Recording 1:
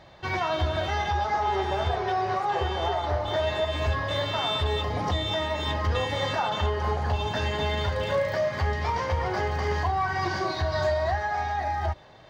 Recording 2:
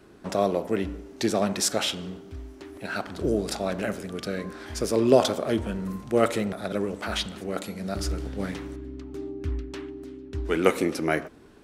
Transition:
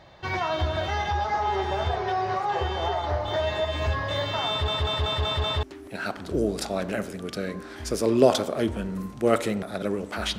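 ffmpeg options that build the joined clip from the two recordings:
ffmpeg -i cue0.wav -i cue1.wav -filter_complex "[0:a]apad=whole_dur=10.38,atrim=end=10.38,asplit=6[link_01][link_02][link_03][link_04][link_05][link_06];[link_01]atrim=end=4.682[link_07];[link_02]atrim=start=4.488:end=4.682[link_08];[link_03]atrim=start=4.488:end=4.682[link_09];[link_04]atrim=start=4.488:end=4.682[link_10];[link_05]atrim=start=4.488:end=4.682[link_11];[link_06]atrim=start=4.488:end=4.682[link_12];[1:a]atrim=start=2.528:end=7.28[link_13];[link_07][link_08]acrossfade=duration=0.004:curve1=hsin:curve2=hsin[link_14];[link_14][link_09]acrossfade=duration=0.004:curve1=hsin:curve2=hsin[link_15];[link_15][link_10]acrossfade=duration=0.004:curve1=hsin:curve2=hsin[link_16];[link_16][link_11]acrossfade=duration=0.004:curve1=hsin:curve2=hsin[link_17];[link_17][link_12]acrossfade=duration=0.004:curve1=hsin:curve2=hsin[link_18];[link_18][link_13]acrossfade=duration=0.004:curve1=hsin:curve2=hsin" out.wav

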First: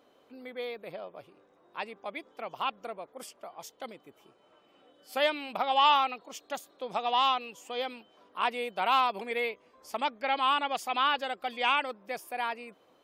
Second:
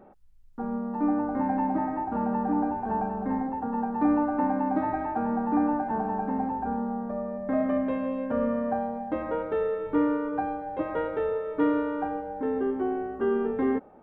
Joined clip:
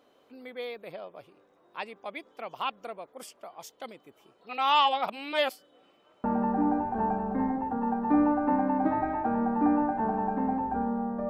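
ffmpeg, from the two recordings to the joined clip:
ffmpeg -i cue0.wav -i cue1.wav -filter_complex "[0:a]apad=whole_dur=11.29,atrim=end=11.29,asplit=2[link_01][link_02];[link_01]atrim=end=4.412[link_03];[link_02]atrim=start=4.408:end=6.242,asetpts=PTS-STARTPTS,areverse[link_04];[1:a]atrim=start=2.148:end=7.2[link_05];[link_03][link_04]acrossfade=duration=0.004:curve1=hsin:curve2=hsin[link_06];[link_06][link_05]acrossfade=duration=0.004:curve1=hsin:curve2=hsin" out.wav

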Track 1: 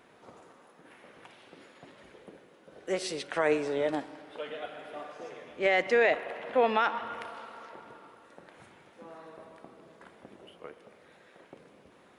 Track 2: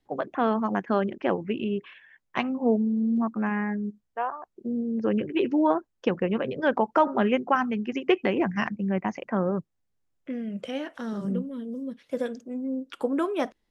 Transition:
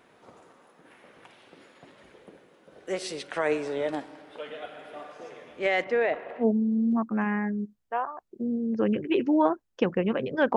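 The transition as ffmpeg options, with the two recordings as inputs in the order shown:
ffmpeg -i cue0.wav -i cue1.wav -filter_complex "[0:a]asettb=1/sr,asplit=3[link_01][link_02][link_03];[link_01]atrim=end=5.844[link_04];[link_02]atrim=start=5.84:end=6.46,asetpts=PTS-STARTPTS,afade=type=in:duration=0.004:curve=qsin,afade=type=out:start_time=0.616:duration=0.004:curve=qsin,lowpass=frequency=1400:poles=1[link_05];[link_03]atrim=start=6.456[link_06];[link_04][link_05]acrossfade=duration=0.004:curve1=hsin:curve2=qsin[link_07];[link_07][link_06]acrossfade=duration=0.004:curve1=qsin:curve2=hsin,apad=whole_dur=10.56,atrim=end=10.56,atrim=end=6.46,asetpts=PTS-STARTPTS[link_08];[1:a]atrim=start=2.63:end=6.81,asetpts=PTS-STARTPTS[link_09];[link_08][link_09]acrossfade=duration=0.08:curve1=tri:curve2=tri" out.wav

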